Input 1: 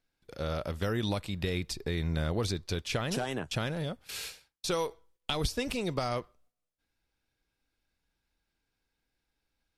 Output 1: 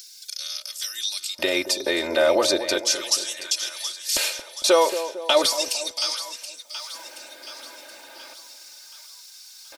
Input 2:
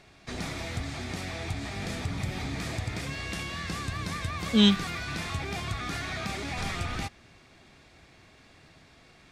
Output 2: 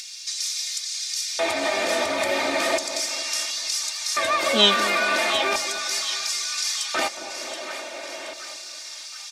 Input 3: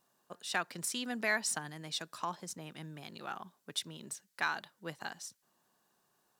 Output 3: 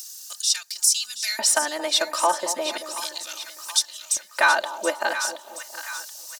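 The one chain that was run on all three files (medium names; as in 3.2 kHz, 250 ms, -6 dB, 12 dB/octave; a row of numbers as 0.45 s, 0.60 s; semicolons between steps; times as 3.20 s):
LFO high-pass square 0.36 Hz 540–5500 Hz; in parallel at +0.5 dB: peak limiter -27.5 dBFS; on the sum: upward compressor, threshold -34 dBFS; comb 3.3 ms, depth 92%; two-band feedback delay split 990 Hz, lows 226 ms, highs 726 ms, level -10.5 dB; normalise loudness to -23 LUFS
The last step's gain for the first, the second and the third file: +6.5 dB, +4.0 dB, +8.0 dB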